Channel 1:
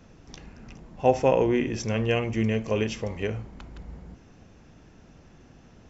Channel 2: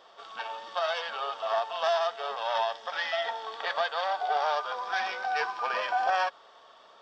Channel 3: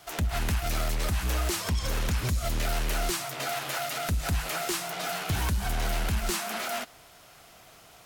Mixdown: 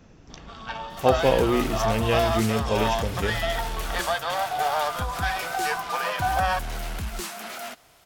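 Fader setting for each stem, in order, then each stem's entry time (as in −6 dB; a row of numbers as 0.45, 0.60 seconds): +0.5, +2.5, −3.5 decibels; 0.00, 0.30, 0.90 seconds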